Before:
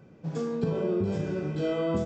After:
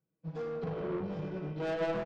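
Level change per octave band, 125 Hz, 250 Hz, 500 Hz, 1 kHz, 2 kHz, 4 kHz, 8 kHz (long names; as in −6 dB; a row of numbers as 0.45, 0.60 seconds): −8.0 dB, −9.0 dB, −5.5 dB, −1.5 dB, −0.5 dB, −5.5 dB, can't be measured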